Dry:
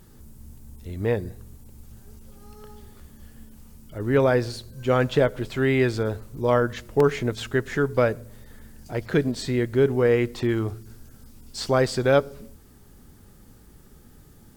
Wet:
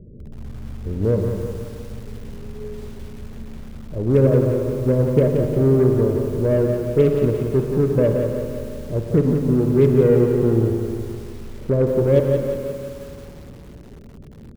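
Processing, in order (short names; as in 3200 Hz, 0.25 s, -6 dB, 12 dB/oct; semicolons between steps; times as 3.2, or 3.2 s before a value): dynamic EQ 480 Hz, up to -4 dB, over -35 dBFS, Q 1.5; in parallel at -2.5 dB: compressor 8:1, threshold -36 dBFS, peak gain reduction 19.5 dB; on the sum: rippled Chebyshev low-pass 610 Hz, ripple 3 dB; added harmonics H 3 -32 dB, 5 -41 dB, 8 -29 dB, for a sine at -12.5 dBFS; on a send: feedback echo 0.118 s, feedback 27%, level -15.5 dB; on the sum: spring tank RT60 2.8 s, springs 52 ms, chirp 40 ms, DRR 5.5 dB; lo-fi delay 0.176 s, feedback 55%, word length 8-bit, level -5.5 dB; gain +6.5 dB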